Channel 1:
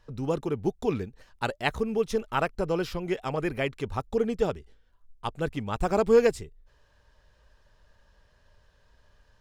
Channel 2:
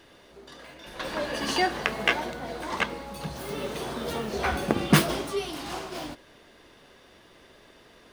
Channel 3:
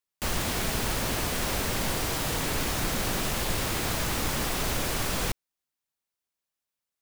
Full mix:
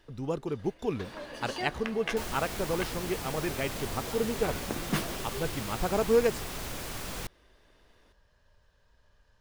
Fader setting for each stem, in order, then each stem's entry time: -4.0, -11.5, -9.0 dB; 0.00, 0.00, 1.95 s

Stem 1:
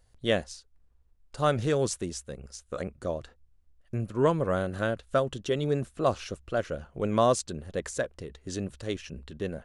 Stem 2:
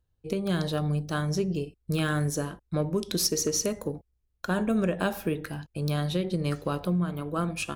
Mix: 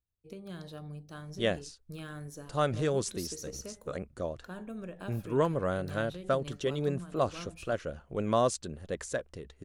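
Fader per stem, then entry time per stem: -3.5, -16.0 dB; 1.15, 0.00 s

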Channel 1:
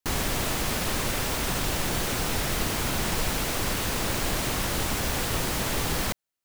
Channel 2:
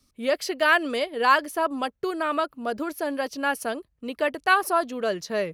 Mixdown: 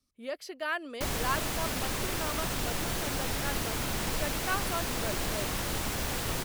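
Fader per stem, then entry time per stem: -5.0, -13.0 dB; 0.95, 0.00 s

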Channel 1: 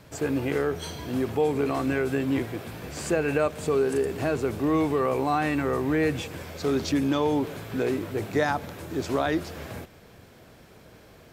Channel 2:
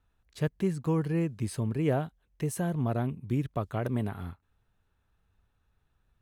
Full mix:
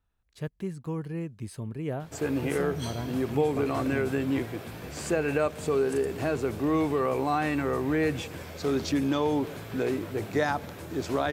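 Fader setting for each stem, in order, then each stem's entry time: -2.0, -5.5 dB; 2.00, 0.00 s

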